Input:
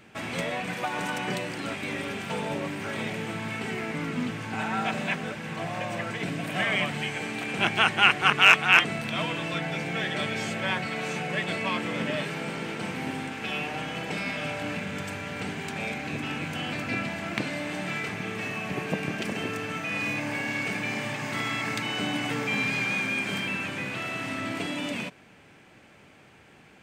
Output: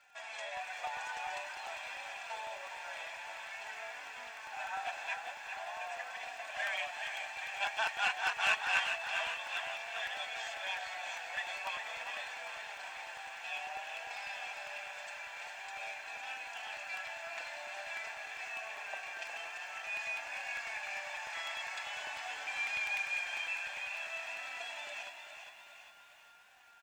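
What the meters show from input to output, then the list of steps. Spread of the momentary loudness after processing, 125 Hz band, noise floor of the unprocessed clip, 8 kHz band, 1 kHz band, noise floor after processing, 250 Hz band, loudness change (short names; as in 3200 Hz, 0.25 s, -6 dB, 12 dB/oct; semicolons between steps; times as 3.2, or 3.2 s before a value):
10 LU, under -35 dB, -54 dBFS, -8.0 dB, -9.5 dB, -55 dBFS, under -35 dB, -11.0 dB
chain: CVSD 64 kbps; whine 1400 Hz -51 dBFS; flange 0.49 Hz, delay 3.8 ms, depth 2.3 ms, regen -1%; elliptic band-pass 650–7400 Hz, stop band 60 dB; comb 1.2 ms, depth 50%; crackle 190/s -53 dBFS; soft clip -12.5 dBFS, distortion -24 dB; frequency-shifting echo 0.409 s, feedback 51%, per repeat +46 Hz, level -9 dB; crackling interface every 0.10 s, samples 64, repeat, from 0.57; lo-fi delay 0.397 s, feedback 55%, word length 9-bit, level -10.5 dB; gain -7.5 dB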